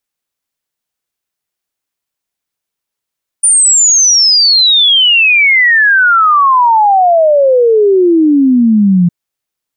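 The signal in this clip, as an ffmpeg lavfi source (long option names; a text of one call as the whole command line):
ffmpeg -f lavfi -i "aevalsrc='0.596*clip(min(t,5.66-t)/0.01,0,1)*sin(2*PI*9400*5.66/log(170/9400)*(exp(log(170/9400)*t/5.66)-1))':duration=5.66:sample_rate=44100" out.wav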